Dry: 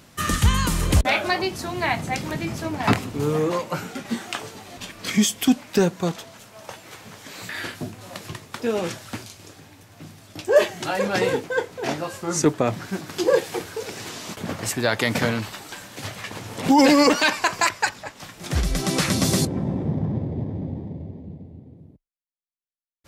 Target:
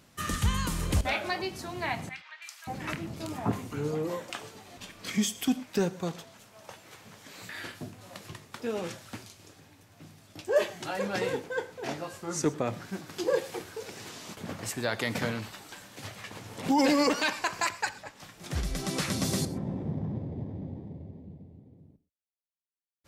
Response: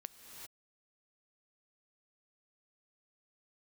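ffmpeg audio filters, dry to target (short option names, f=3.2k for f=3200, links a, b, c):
-filter_complex "[0:a]asettb=1/sr,asplit=3[a][b][c];[a]atrim=end=2.094[d];[b]atrim=start=2.09:end=4.3,asetpts=PTS-STARTPTS,afade=t=in:d=0.004:c=qsin,afade=t=out:st=2.206:d=0.004:c=qsin,acrossover=split=1200|3900[e][f][g];[g]adelay=330[h];[e]adelay=580[i];[i][f][h]amix=inputs=3:normalize=0,atrim=end_sample=97461[j];[c]atrim=start=4.296[k];[d][j]acrossfade=d=0.004:c1=hsin:c2=qsin[l];[l][k]acrossfade=d=0.004:c1=qsin:c2=hsin[m];[1:a]atrim=start_sample=2205,afade=t=out:st=0.19:d=0.01,atrim=end_sample=8820,asetrate=48510,aresample=44100[n];[m][n]afir=irnorm=-1:irlink=0,volume=-2dB"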